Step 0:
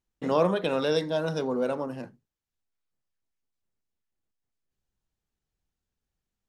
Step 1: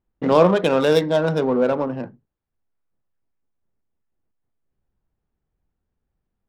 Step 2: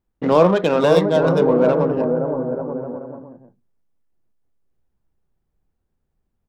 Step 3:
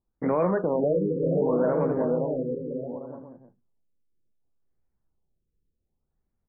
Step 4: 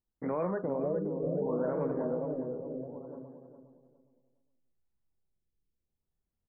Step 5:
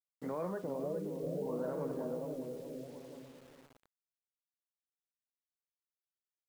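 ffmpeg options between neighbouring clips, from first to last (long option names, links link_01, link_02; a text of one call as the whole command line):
ffmpeg -i in.wav -af "adynamicsmooth=sensitivity=4:basefreq=1600,volume=9dB" out.wav
ffmpeg -i in.wav -filter_complex "[0:a]acrossover=split=1200[link_01][link_02];[link_01]aecho=1:1:520|884|1139|1317|1442:0.631|0.398|0.251|0.158|0.1[link_03];[link_02]asoftclip=type=tanh:threshold=-21.5dB[link_04];[link_03][link_04]amix=inputs=2:normalize=0,volume=1dB" out.wav
ffmpeg -i in.wav -af "alimiter=limit=-9.5dB:level=0:latency=1:release=42,afftfilt=real='re*lt(b*sr/1024,520*pow(2500/520,0.5+0.5*sin(2*PI*0.67*pts/sr)))':imag='im*lt(b*sr/1024,520*pow(2500/520,0.5+0.5*sin(2*PI*0.67*pts/sr)))':win_size=1024:overlap=0.75,volume=-5.5dB" out.wav
ffmpeg -i in.wav -filter_complex "[0:a]asplit=2[link_01][link_02];[link_02]adelay=410,lowpass=frequency=1200:poles=1,volume=-8dB,asplit=2[link_03][link_04];[link_04]adelay=410,lowpass=frequency=1200:poles=1,volume=0.29,asplit=2[link_05][link_06];[link_06]adelay=410,lowpass=frequency=1200:poles=1,volume=0.29[link_07];[link_01][link_03][link_05][link_07]amix=inputs=4:normalize=0,volume=-8.5dB" out.wav
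ffmpeg -i in.wav -af "acrusher=bits=8:mix=0:aa=0.000001,volume=-6dB" out.wav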